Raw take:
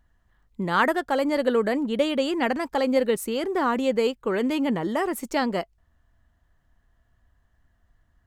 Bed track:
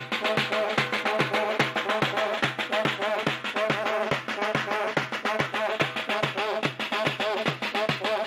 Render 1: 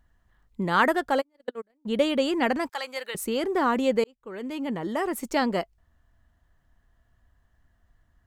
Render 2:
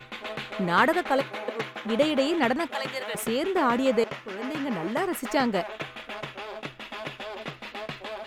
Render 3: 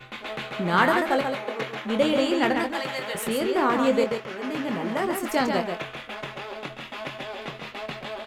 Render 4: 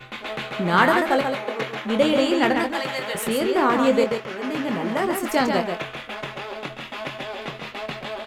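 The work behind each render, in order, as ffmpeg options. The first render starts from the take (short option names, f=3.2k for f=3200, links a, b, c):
-filter_complex "[0:a]asplit=3[a][b][c];[a]afade=t=out:st=1.2:d=0.02[d];[b]agate=range=-46dB:threshold=-18dB:ratio=16:release=100:detection=peak,afade=t=in:st=1.2:d=0.02,afade=t=out:st=1.85:d=0.02[e];[c]afade=t=in:st=1.85:d=0.02[f];[d][e][f]amix=inputs=3:normalize=0,asettb=1/sr,asplit=3[g][h][i];[g]atrim=end=2.694[j];[h]atrim=start=2.69:end=3.15,asetpts=PTS-STARTPTS,afade=t=in:d=0.004:c=qsin,afade=t=out:st=0.456:d=0.004:c=qsin,highpass=1.2k[k];[i]atrim=start=3.146[l];[j][k]acrossfade=d=0.004:c1=hsin:c2=qsin[m];[m][l]acrossfade=d=0.004:c1=qsin:c2=hsin,asplit=2[n][o];[n]atrim=end=4.04,asetpts=PTS-STARTPTS,afade=t=out:st=4.036:d=0.004:c=hsin[p];[o]atrim=start=4.04,asetpts=PTS-STARTPTS,afade=t=in:d=1.26[q];[p][q]concat=n=2:v=0:a=1"
-filter_complex "[1:a]volume=-10dB[a];[0:a][a]amix=inputs=2:normalize=0"
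-filter_complex "[0:a]asplit=2[a][b];[b]adelay=23,volume=-8.5dB[c];[a][c]amix=inputs=2:normalize=0,asplit=2[d][e];[e]aecho=0:1:137:0.531[f];[d][f]amix=inputs=2:normalize=0"
-af "volume=3dB"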